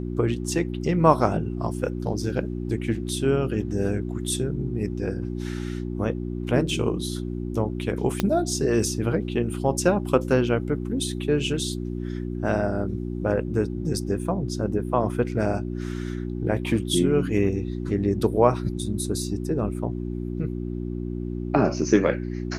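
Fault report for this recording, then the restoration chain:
mains hum 60 Hz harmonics 6 −30 dBFS
0:08.20: click −8 dBFS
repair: click removal
hum removal 60 Hz, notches 6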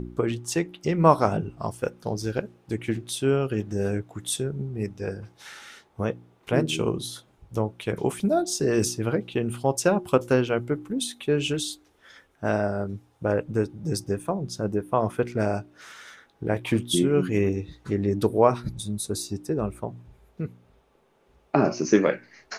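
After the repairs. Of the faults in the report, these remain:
0:08.20: click

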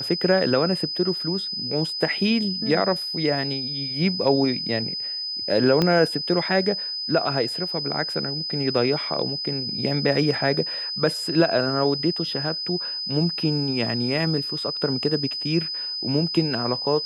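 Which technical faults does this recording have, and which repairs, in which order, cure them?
whistle 5,000 Hz −27 dBFS
0:05.82: click −8 dBFS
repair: click removal
notch filter 5,000 Hz, Q 30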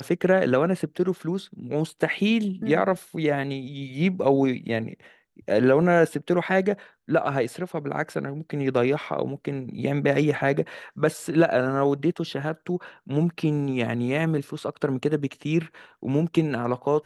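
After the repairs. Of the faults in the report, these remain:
0:05.82: click

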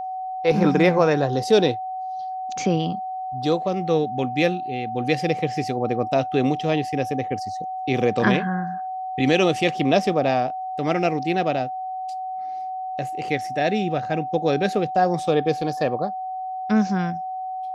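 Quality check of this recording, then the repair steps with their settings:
whistle 750 Hz −27 dBFS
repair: notch filter 750 Hz, Q 30

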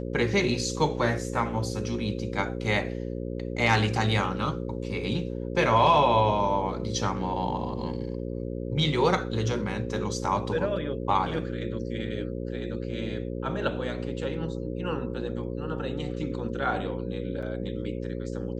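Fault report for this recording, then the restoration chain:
mains buzz 60 Hz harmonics 9 −33 dBFS
0:17.42–0:17.43: drop-out 6.2 ms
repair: hum removal 60 Hz, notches 9
repair the gap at 0:17.42, 6.2 ms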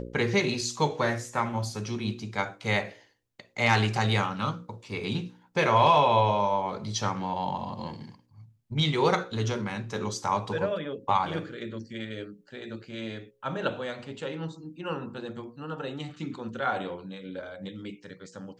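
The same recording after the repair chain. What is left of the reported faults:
none of them is left

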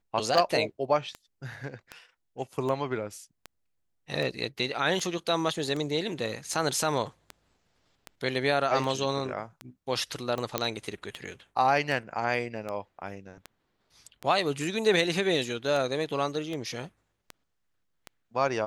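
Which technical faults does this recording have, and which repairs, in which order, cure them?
scratch tick 78 rpm
0:10.58: click −9 dBFS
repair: click removal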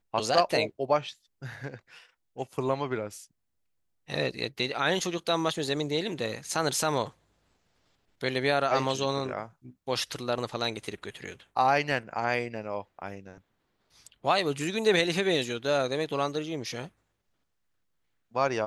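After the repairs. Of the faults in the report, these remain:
0:10.58: click

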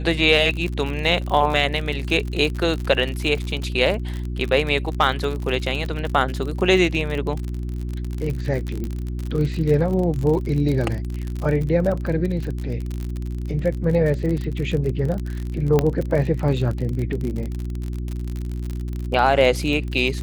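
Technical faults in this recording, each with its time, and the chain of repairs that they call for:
surface crackle 47 per second −25 dBFS
mains hum 60 Hz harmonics 6 −27 dBFS
0:08.84: click −17 dBFS
0:15.79: click −6 dBFS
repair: click removal
hum removal 60 Hz, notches 6

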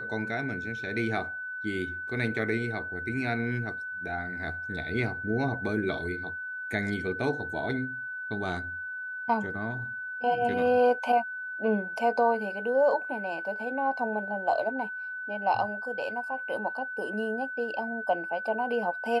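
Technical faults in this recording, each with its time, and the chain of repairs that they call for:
whistle 1,500 Hz −34 dBFS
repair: notch filter 1,500 Hz, Q 30

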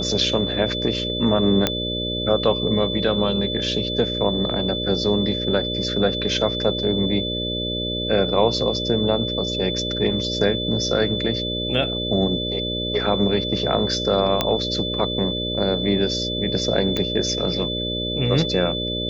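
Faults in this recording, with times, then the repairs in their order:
mains buzz 60 Hz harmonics 10 −28 dBFS
whistle 3,500 Hz −26 dBFS
0:01.67: click −3 dBFS
0:14.41: click −4 dBFS
0:16.97: click −10 dBFS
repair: click removal
hum removal 60 Hz, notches 10
notch filter 3,500 Hz, Q 30

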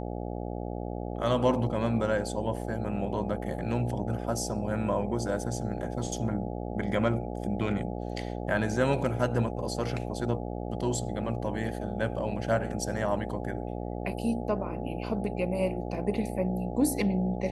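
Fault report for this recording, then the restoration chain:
mains buzz 60 Hz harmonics 14 −35 dBFS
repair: hum removal 60 Hz, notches 14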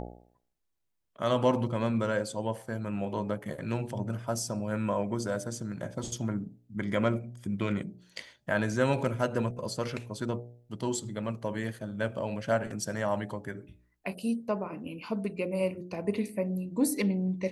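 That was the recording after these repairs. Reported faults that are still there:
none of them is left

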